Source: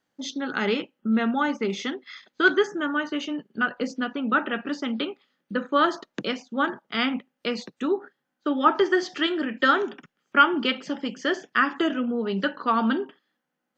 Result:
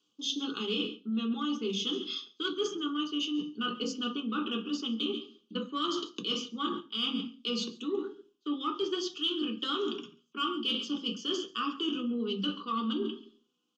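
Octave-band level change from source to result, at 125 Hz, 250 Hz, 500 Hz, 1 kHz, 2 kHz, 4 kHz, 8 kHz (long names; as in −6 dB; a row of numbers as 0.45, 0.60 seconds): −6.0 dB, −6.5 dB, −9.5 dB, −12.5 dB, −18.0 dB, +1.0 dB, can't be measured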